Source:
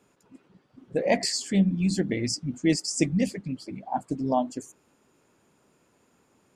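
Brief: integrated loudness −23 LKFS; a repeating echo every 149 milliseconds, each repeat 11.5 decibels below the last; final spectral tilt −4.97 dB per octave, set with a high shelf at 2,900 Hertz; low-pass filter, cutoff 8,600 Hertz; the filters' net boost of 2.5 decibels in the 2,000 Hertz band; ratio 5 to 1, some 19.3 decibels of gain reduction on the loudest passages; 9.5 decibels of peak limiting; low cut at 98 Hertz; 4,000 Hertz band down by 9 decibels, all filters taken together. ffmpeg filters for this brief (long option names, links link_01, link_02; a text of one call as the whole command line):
ffmpeg -i in.wav -af "highpass=98,lowpass=8600,equalizer=frequency=2000:width_type=o:gain=6.5,highshelf=frequency=2900:gain=-4.5,equalizer=frequency=4000:width_type=o:gain=-8.5,acompressor=threshold=-40dB:ratio=5,alimiter=level_in=12dB:limit=-24dB:level=0:latency=1,volume=-12dB,aecho=1:1:149|298|447:0.266|0.0718|0.0194,volume=23dB" out.wav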